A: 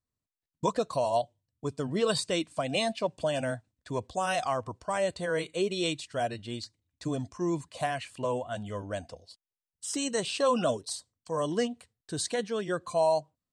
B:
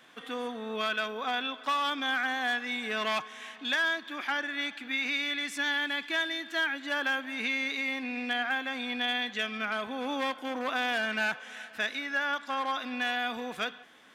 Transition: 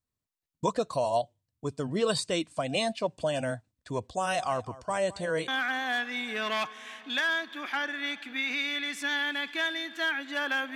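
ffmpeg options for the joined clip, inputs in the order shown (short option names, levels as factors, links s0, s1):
-filter_complex "[0:a]asplit=3[s0][s1][s2];[s0]afade=t=out:st=4.26:d=0.02[s3];[s1]aecho=1:1:212:0.126,afade=t=in:st=4.26:d=0.02,afade=t=out:st=5.48:d=0.02[s4];[s2]afade=t=in:st=5.48:d=0.02[s5];[s3][s4][s5]amix=inputs=3:normalize=0,apad=whole_dur=10.75,atrim=end=10.75,atrim=end=5.482[s6];[1:a]atrim=start=2.028:end=7.3[s7];[s6][s7]acrossfade=d=0.004:c1=hsin:c2=hsin"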